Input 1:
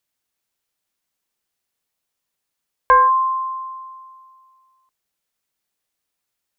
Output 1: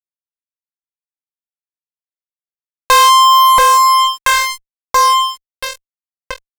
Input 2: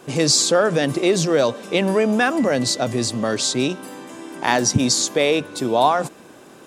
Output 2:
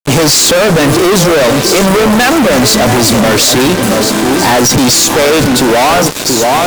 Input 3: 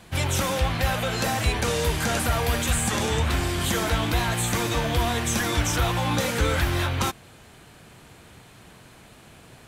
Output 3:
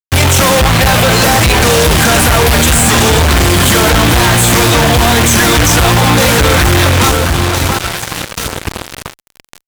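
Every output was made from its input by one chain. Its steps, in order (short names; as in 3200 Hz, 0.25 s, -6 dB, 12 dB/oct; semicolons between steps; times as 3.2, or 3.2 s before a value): one-sided clip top -18.5 dBFS; on a send: echo with dull and thin repeats by turns 0.681 s, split 1400 Hz, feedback 63%, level -10 dB; on the sum: fuzz box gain 42 dB, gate -36 dBFS; gain +6.5 dB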